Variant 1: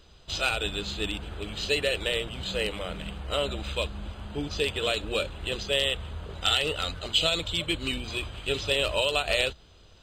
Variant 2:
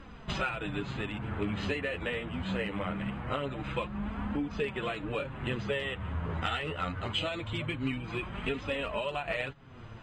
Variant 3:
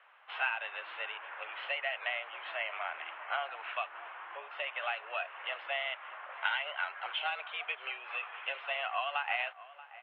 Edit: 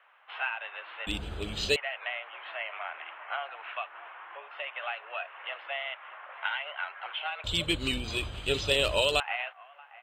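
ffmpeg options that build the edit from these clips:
-filter_complex "[0:a]asplit=2[a][b];[2:a]asplit=3[c][d][e];[c]atrim=end=1.072[f];[a]atrim=start=1.068:end=1.762[g];[d]atrim=start=1.758:end=7.442[h];[b]atrim=start=7.438:end=9.202[i];[e]atrim=start=9.198[j];[f][g]acrossfade=d=0.004:c1=hsin:c2=hsin[k];[k][h]acrossfade=d=0.004:c1=hsin:c2=hsin[l];[l][i]acrossfade=d=0.004:c1=hsin:c2=hsin[m];[m][j]acrossfade=d=0.004:c1=hsin:c2=hsin"

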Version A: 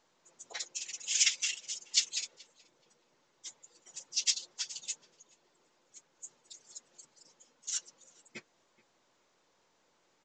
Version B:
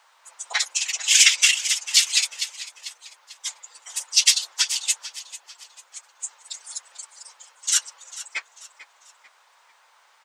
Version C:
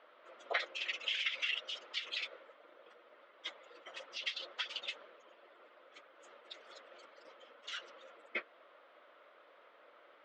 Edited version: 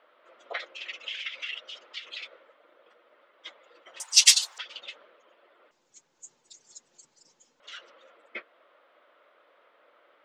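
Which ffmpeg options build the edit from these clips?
-filter_complex "[2:a]asplit=3[a][b][c];[a]atrim=end=4.002[d];[1:a]atrim=start=3.998:end=4.582[e];[b]atrim=start=4.578:end=5.712[f];[0:a]atrim=start=5.708:end=7.602[g];[c]atrim=start=7.598[h];[d][e]acrossfade=d=0.004:c1=hsin:c2=hsin[i];[i][f]acrossfade=d=0.004:c1=hsin:c2=hsin[j];[j][g]acrossfade=d=0.004:c1=hsin:c2=hsin[k];[k][h]acrossfade=d=0.004:c1=hsin:c2=hsin"

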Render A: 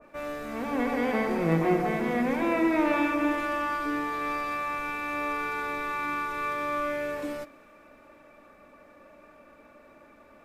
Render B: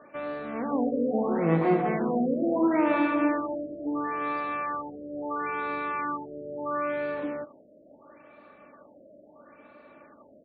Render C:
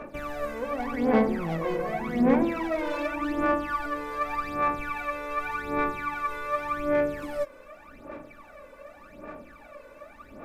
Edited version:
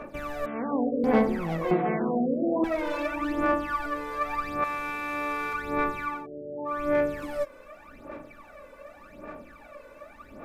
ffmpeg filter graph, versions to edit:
-filter_complex "[1:a]asplit=3[a][b][c];[2:a]asplit=5[d][e][f][g][h];[d]atrim=end=0.462[i];[a]atrim=start=0.458:end=1.042[j];[e]atrim=start=1.038:end=1.712[k];[b]atrim=start=1.708:end=2.642[l];[f]atrim=start=2.638:end=4.642[m];[0:a]atrim=start=4.638:end=5.532[n];[g]atrim=start=5.528:end=6.27[o];[c]atrim=start=6.03:end=6.88[p];[h]atrim=start=6.64[q];[i][j]acrossfade=d=0.004:c1=hsin:c2=hsin[r];[r][k]acrossfade=d=0.004:c1=hsin:c2=hsin[s];[s][l]acrossfade=d=0.004:c1=hsin:c2=hsin[t];[t][m]acrossfade=d=0.004:c1=hsin:c2=hsin[u];[u][n]acrossfade=d=0.004:c1=hsin:c2=hsin[v];[v][o]acrossfade=d=0.004:c1=hsin:c2=hsin[w];[w][p]acrossfade=d=0.24:c1=tri:c2=tri[x];[x][q]acrossfade=d=0.24:c1=tri:c2=tri"

